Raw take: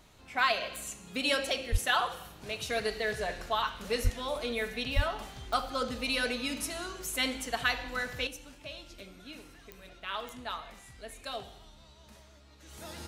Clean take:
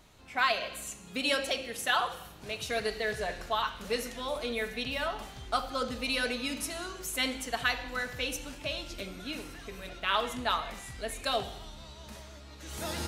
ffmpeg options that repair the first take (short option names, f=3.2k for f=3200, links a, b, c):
-filter_complex "[0:a]adeclick=t=4,asplit=3[a][b][c];[a]afade=t=out:st=1.71:d=0.02[d];[b]highpass=f=140:w=0.5412,highpass=f=140:w=1.3066,afade=t=in:st=1.71:d=0.02,afade=t=out:st=1.83:d=0.02[e];[c]afade=t=in:st=1.83:d=0.02[f];[d][e][f]amix=inputs=3:normalize=0,asplit=3[g][h][i];[g]afade=t=out:st=4.03:d=0.02[j];[h]highpass=f=140:w=0.5412,highpass=f=140:w=1.3066,afade=t=in:st=4.03:d=0.02,afade=t=out:st=4.15:d=0.02[k];[i]afade=t=in:st=4.15:d=0.02[l];[j][k][l]amix=inputs=3:normalize=0,asplit=3[m][n][o];[m]afade=t=out:st=4.95:d=0.02[p];[n]highpass=f=140:w=0.5412,highpass=f=140:w=1.3066,afade=t=in:st=4.95:d=0.02,afade=t=out:st=5.07:d=0.02[q];[o]afade=t=in:st=5.07:d=0.02[r];[p][q][r]amix=inputs=3:normalize=0,asetnsamples=n=441:p=0,asendcmd='8.27 volume volume 8.5dB',volume=0dB"